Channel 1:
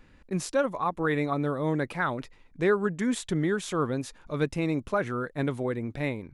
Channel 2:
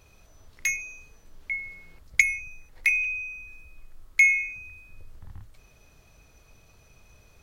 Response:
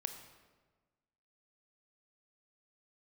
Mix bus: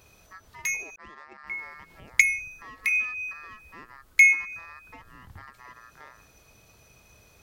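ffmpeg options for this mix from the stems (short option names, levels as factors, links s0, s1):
-filter_complex "[0:a]alimiter=limit=0.0944:level=0:latency=1:release=365,aeval=exprs='val(0)*sin(2*PI*1500*n/s)':c=same,adynamicsmooth=sensitivity=1.5:basefreq=1100,volume=0.251,asplit=2[s0][s1];[1:a]highpass=f=97:p=1,volume=1.26,asplit=3[s2][s3][s4];[s2]atrim=end=0.96,asetpts=PTS-STARTPTS,afade=t=out:st=0.956:d=0.004:c=hsin[s5];[s3]atrim=start=0.96:end=1.47,asetpts=PTS-STARTPTS,volume=0[s6];[s4]atrim=start=1.47,asetpts=PTS-STARTPTS,afade=t=in:d=0.004:c=hsin[s7];[s5][s6][s7]concat=n=3:v=0:a=1[s8];[s1]apad=whole_len=327342[s9];[s8][s9]sidechaincompress=threshold=0.00355:ratio=4:attack=7.4:release=157[s10];[s0][s10]amix=inputs=2:normalize=0,highshelf=f=8700:g=5"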